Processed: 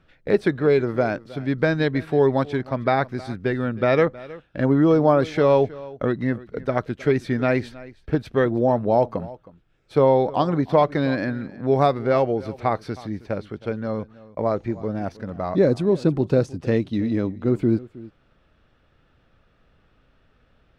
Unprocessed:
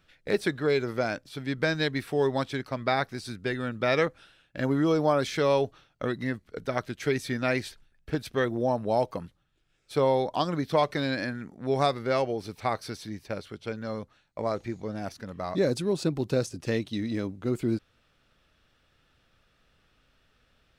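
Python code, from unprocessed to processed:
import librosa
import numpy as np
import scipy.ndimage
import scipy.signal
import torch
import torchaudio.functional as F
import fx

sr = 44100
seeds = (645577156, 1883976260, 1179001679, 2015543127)

y = fx.lowpass(x, sr, hz=1100.0, slope=6)
y = y + 10.0 ** (-19.5 / 20.0) * np.pad(y, (int(316 * sr / 1000.0), 0))[:len(y)]
y = y * 10.0 ** (8.0 / 20.0)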